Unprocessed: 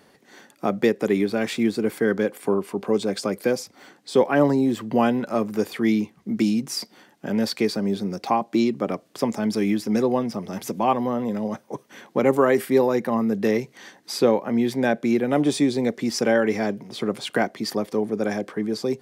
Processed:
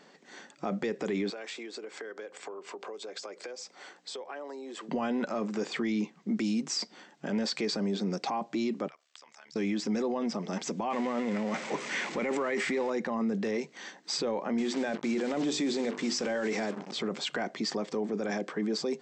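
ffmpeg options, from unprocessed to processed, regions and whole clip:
-filter_complex "[0:a]asettb=1/sr,asplit=3[a][b][c];[a]atrim=end=1.304[d];[b]atrim=start=1.3:end=4.89,asetpts=PTS-STARTPTS,afade=t=in:d=0.004:c=qsin,afade=t=out:st=3.586:d=0.004:c=qsin,highpass=f=360:w=0.5412,highpass=f=360:w=1.3066,acompressor=threshold=-36dB:ratio=10:attack=3.2:release=140:knee=1:detection=peak,aeval=exprs='val(0)+0.000708*(sin(2*PI*60*n/s)+sin(2*PI*2*60*n/s)/2+sin(2*PI*3*60*n/s)/3+sin(2*PI*4*60*n/s)/4+sin(2*PI*5*60*n/s)/5)':c=same[e];[c]atrim=start=4.886[f];[d][e]acrossfade=d=0.004:c1=hsin:c2=qsin[g];[g][f]acrossfade=d=0.004:c1=qsin:c2=hsin,asettb=1/sr,asplit=3[h][i][j];[h]atrim=end=8.884[k];[i]atrim=start=8.88:end=9.56,asetpts=PTS-STARTPTS,afade=t=in:d=0.004:c=qsin,afade=t=out:st=0.676:d=0.004:c=qsin,highpass=1.4k,acompressor=threshold=-45dB:ratio=12:attack=3.2:release=140:knee=1:detection=peak,tremolo=f=73:d=0.889[l];[j]atrim=start=9.556[m];[k][l]acrossfade=d=0.004:c1=hsin:c2=qsin[n];[n][m]acrossfade=d=0.004:c1=qsin:c2=hsin,asettb=1/sr,asplit=3[o][p][q];[o]atrim=end=10.904[r];[p]atrim=start=10.9:end=12.9,asetpts=PTS-STARTPTS,afade=t=in:d=0.004:c=qsin,afade=t=out:st=1.996:d=0.004:c=qsin,aeval=exprs='val(0)+0.5*0.0211*sgn(val(0))':c=same,equalizer=f=2.1k:t=o:w=0.63:g=9.5,bandreject=f=1.6k:w=24[s];[q]atrim=start=12.896[t];[r][s]acrossfade=d=0.004:c1=hsin:c2=qsin[u];[u][t]acrossfade=d=0.004:c1=qsin:c2=hsin,asettb=1/sr,asplit=3[v][w][x];[v]atrim=end=14.584[y];[w]atrim=start=14.58:end=16.93,asetpts=PTS-STARTPTS,afade=t=in:d=0.004:c=qsin,afade=t=out:st=2.346:d=0.004:c=qsin,highpass=f=48:p=1,bandreject=f=50:t=h:w=6,bandreject=f=100:t=h:w=6,bandreject=f=150:t=h:w=6,bandreject=f=200:t=h:w=6,bandreject=f=250:t=h:w=6,bandreject=f=300:t=h:w=6,bandreject=f=350:t=h:w=6,bandreject=f=400:t=h:w=6,bandreject=f=450:t=h:w=6,acrusher=bits=5:mix=0:aa=0.5[z];[x]atrim=start=16.926[aa];[y][z]acrossfade=d=0.004:c1=hsin:c2=qsin[ab];[ab][aa]acrossfade=d=0.004:c1=qsin:c2=hsin,afftfilt=real='re*between(b*sr/4096,150,8200)':imag='im*between(b*sr/4096,150,8200)':win_size=4096:overlap=0.75,equalizer=f=210:w=0.45:g=-3,alimiter=limit=-23dB:level=0:latency=1:release=20"

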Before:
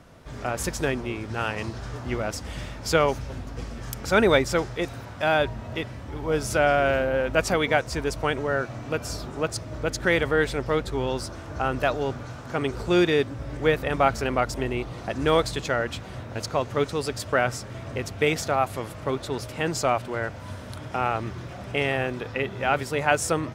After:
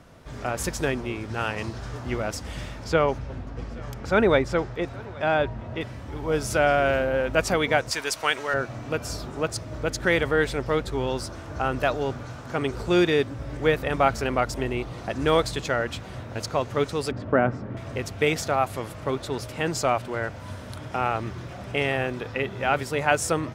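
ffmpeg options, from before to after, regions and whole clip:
-filter_complex "[0:a]asettb=1/sr,asplit=3[a][b][c];[a]atrim=end=2.844[d];[b]atrim=start=2.84:end=5.81,asetpts=PTS-STARTPTS,afade=t=in:d=0.004:c=qsin,afade=t=out:st=2.966:d=0.004:c=qsin,aemphasis=mode=reproduction:type=75kf,aecho=1:1:825:0.0708,atrim=end_sample=130977[e];[c]atrim=start=5.806[f];[d][e]acrossfade=d=0.004:c1=hsin:c2=qsin[g];[g][f]acrossfade=d=0.004:c1=qsin:c2=hsin,asettb=1/sr,asplit=3[h][i][j];[h]atrim=end=7.914[k];[i]atrim=start=7.91:end=8.54,asetpts=PTS-STARTPTS,afade=t=in:d=0.004:c=qsin,afade=t=out:st=0.626:d=0.004:c=qsin,highpass=f=220:p=1,tiltshelf=f=820:g=-8.5[l];[j]atrim=start=8.536[m];[k][l]acrossfade=d=0.004:c1=hsin:c2=qsin[n];[n][m]acrossfade=d=0.004:c1=qsin:c2=hsin,asettb=1/sr,asplit=3[o][p][q];[o]atrim=end=17.114[r];[p]atrim=start=17.11:end=17.77,asetpts=PTS-STARTPTS,afade=t=in:d=0.004:c=qsin,afade=t=out:st=0.656:d=0.004:c=qsin,lowpass=1.6k,equalizer=f=240:w=1:g=9.5[s];[q]atrim=start=17.766[t];[r][s]acrossfade=d=0.004:c1=hsin:c2=qsin[u];[u][t]acrossfade=d=0.004:c1=qsin:c2=hsin"

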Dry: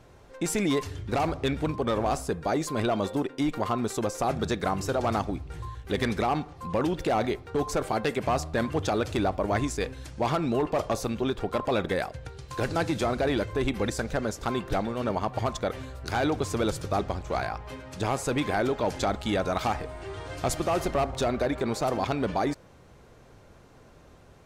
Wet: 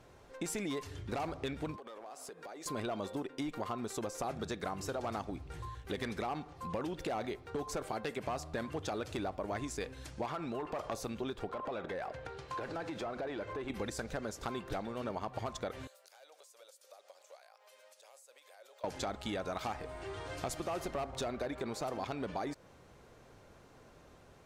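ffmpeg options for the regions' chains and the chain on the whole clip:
-filter_complex "[0:a]asettb=1/sr,asplit=3[a][b][c];[a]atrim=end=1.764[d];[b]atrim=start=1.76:end=2.66,asetpts=PTS-STARTPTS,afade=t=in:d=0.004:c=qsin,afade=t=out:st=0.896:d=0.004:c=qsin,highpass=380,acompressor=threshold=-39dB:ratio=20:attack=3.2:release=140:knee=1:detection=peak,asoftclip=type=hard:threshold=-36.5dB[e];[c]atrim=start=2.656[f];[d][e]acrossfade=d=0.004:c1=hsin:c2=qsin[g];[g][f]acrossfade=d=0.004:c1=qsin:c2=hsin,asettb=1/sr,asplit=3[h][i][j];[h]atrim=end=10.254[k];[i]atrim=start=10.25:end=10.92,asetpts=PTS-STARTPTS,afade=t=in:d=0.004:c=qsin,afade=t=out:st=0.666:d=0.004:c=qsin,equalizer=f=1.3k:t=o:w=1.9:g=6,acompressor=threshold=-27dB:ratio=2.5:attack=3.2:release=140:knee=1:detection=peak[l];[j]atrim=start=10.916[m];[k][l]acrossfade=d=0.004:c1=hsin:c2=qsin[n];[n][m]acrossfade=d=0.004:c1=qsin:c2=hsin,asettb=1/sr,asplit=3[o][p][q];[o]atrim=end=11.494[r];[p]atrim=start=11.49:end=13.7,asetpts=PTS-STARTPTS,afade=t=in:d=0.004:c=qsin,afade=t=out:st=2.206:d=0.004:c=qsin,acompressor=threshold=-34dB:ratio=4:attack=3.2:release=140:knee=1:detection=peak,asplit=2[s][t];[t]highpass=f=720:p=1,volume=17dB,asoftclip=type=tanh:threshold=-21dB[u];[s][u]amix=inputs=2:normalize=0,lowpass=f=1.1k:p=1,volume=-6dB[v];[q]atrim=start=13.696[w];[r][v]acrossfade=d=0.004:c1=hsin:c2=qsin[x];[x][w]acrossfade=d=0.004:c1=qsin:c2=hsin,asettb=1/sr,asplit=3[y][z][aa];[y]atrim=end=15.874[ab];[z]atrim=start=15.87:end=18.84,asetpts=PTS-STARTPTS,afade=t=in:d=0.004:c=qsin,afade=t=out:st=2.966:d=0.004:c=qsin,aderivative,acompressor=threshold=-56dB:ratio=6:attack=3.2:release=140:knee=1:detection=peak,highpass=f=550:t=q:w=6.6[ac];[aa]atrim=start=18.836[ad];[ab][ac]acrossfade=d=0.004:c1=hsin:c2=qsin[ae];[ae][ad]acrossfade=d=0.004:c1=qsin:c2=hsin,lowshelf=f=190:g=-5,acompressor=threshold=-33dB:ratio=3,volume=-3.5dB"

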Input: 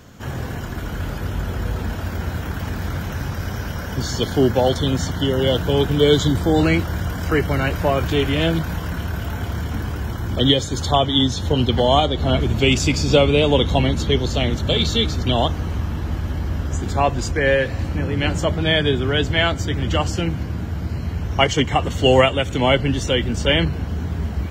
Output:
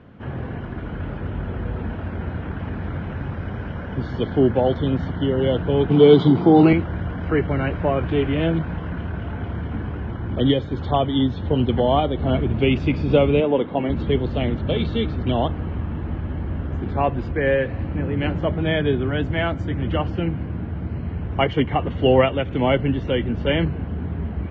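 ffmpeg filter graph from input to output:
-filter_complex "[0:a]asettb=1/sr,asplit=3[a][b][c];[a]atrim=end=5.904[d];[b]atrim=start=5.9:end=6.73,asetpts=PTS-STARTPTS,afade=t=in:d=0.004:c=qsin,afade=t=out:st=0.826:d=0.004:c=qsin,acontrast=32,highpass=f=130:w=0.5412,highpass=f=130:w=1.3066,equalizer=f=380:t=q:w=4:g=5,equalizer=f=550:t=q:w=4:g=-6,equalizer=f=810:t=q:w=4:g=5,equalizer=f=1.7k:t=q:w=4:g=-10,equalizer=f=4.7k:t=q:w=4:g=7,lowpass=f=7.2k:w=0.5412,lowpass=f=7.2k:w=1.3066[e];[c]atrim=start=6.726[f];[d][e]acrossfade=d=0.004:c1=hsin:c2=qsin[g];[g][f]acrossfade=d=0.004:c1=qsin:c2=hsin,asettb=1/sr,asplit=3[h][i][j];[h]atrim=end=13.404[k];[i]atrim=start=13.4:end=13.9,asetpts=PTS-STARTPTS,afade=t=in:d=0.004:c=qsin,afade=t=out:st=0.496:d=0.004:c=qsin,highpass=230,lowpass=2.3k,aeval=exprs='sgn(val(0))*max(abs(val(0))-0.00501,0)':c=same[l];[j]atrim=start=13.896[m];[k][l]acrossfade=d=0.004:c1=hsin:c2=qsin[n];[n][m]acrossfade=d=0.004:c1=qsin:c2=hsin,asettb=1/sr,asplit=3[o][p][q];[o]atrim=end=19.084[r];[p]atrim=start=19.08:end=19.8,asetpts=PTS-STARTPTS,afade=t=in:d=0.004:c=qsin,afade=t=out:st=0.716:d=0.004:c=qsin,highshelf=f=5.6k:t=q:w=1.5:g=11.5,bandreject=f=420:w=7.5[s];[q]atrim=start=19.796[t];[r][s]acrossfade=d=0.004:c1=hsin:c2=qsin[u];[u][t]acrossfade=d=0.004:c1=qsin:c2=hsin,lowpass=f=2.9k:w=0.5412,lowpass=f=2.9k:w=1.3066,equalizer=f=260:w=0.38:g=6,volume=-6dB"

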